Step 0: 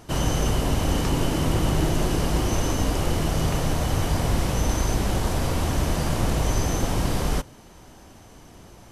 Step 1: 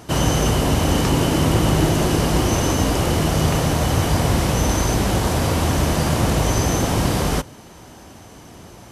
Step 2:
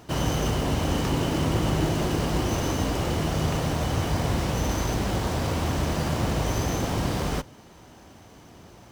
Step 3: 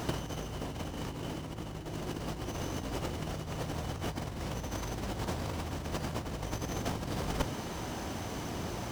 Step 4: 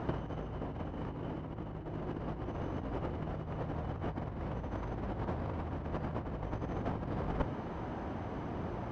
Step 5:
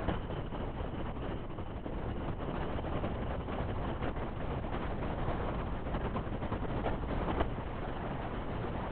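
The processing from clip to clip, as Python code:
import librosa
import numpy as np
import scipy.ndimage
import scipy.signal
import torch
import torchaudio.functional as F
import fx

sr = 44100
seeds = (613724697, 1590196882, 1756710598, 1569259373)

y1 = scipy.signal.sosfilt(scipy.signal.butter(2, 63.0, 'highpass', fs=sr, output='sos'), x)
y1 = y1 * 10.0 ** (6.5 / 20.0)
y2 = fx.running_max(y1, sr, window=3)
y2 = y2 * 10.0 ** (-7.0 / 20.0)
y3 = fx.over_compress(y2, sr, threshold_db=-33.0, ratio=-0.5)
y4 = scipy.signal.sosfilt(scipy.signal.butter(2, 1500.0, 'lowpass', fs=sr, output='sos'), y3)
y4 = y4 * 10.0 ** (-1.0 / 20.0)
y5 = fx.lpc_vocoder(y4, sr, seeds[0], excitation='whisper', order=8)
y5 = fx.high_shelf(y5, sr, hz=2700.0, db=11.5)
y5 = y5 * 10.0 ** (2.0 / 20.0)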